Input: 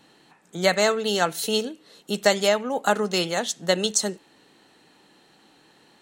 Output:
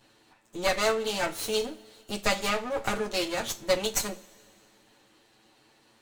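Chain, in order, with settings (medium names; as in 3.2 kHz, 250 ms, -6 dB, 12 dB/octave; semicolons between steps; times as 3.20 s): comb filter that takes the minimum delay 9 ms; two-slope reverb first 0.28 s, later 2.4 s, from -22 dB, DRR 7.5 dB; trim -4 dB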